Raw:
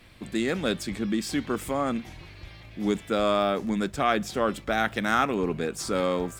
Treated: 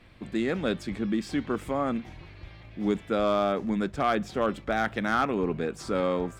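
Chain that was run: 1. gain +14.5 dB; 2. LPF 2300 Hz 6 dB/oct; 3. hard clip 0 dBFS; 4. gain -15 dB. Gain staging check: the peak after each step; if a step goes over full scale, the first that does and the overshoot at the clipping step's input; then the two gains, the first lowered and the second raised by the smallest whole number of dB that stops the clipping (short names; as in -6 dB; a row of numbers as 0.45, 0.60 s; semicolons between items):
+6.0, +4.5, 0.0, -15.0 dBFS; step 1, 4.5 dB; step 1 +9.5 dB, step 4 -10 dB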